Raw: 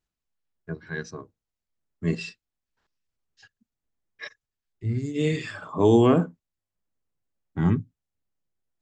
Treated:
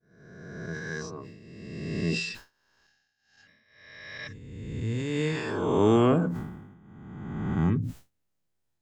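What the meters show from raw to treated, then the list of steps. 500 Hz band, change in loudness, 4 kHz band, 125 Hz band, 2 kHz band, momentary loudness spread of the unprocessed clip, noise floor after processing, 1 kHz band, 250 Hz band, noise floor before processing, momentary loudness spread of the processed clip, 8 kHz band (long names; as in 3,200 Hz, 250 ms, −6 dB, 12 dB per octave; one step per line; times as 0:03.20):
−2.5 dB, −3.5 dB, +1.5 dB, −1.5 dB, +1.5 dB, 23 LU, −77 dBFS, −1.0 dB, −2.0 dB, below −85 dBFS, 22 LU, +2.0 dB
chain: peak hold with a rise ahead of every peak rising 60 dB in 1.71 s
downward expander −45 dBFS
level that may fall only so fast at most 52 dB per second
level −5.5 dB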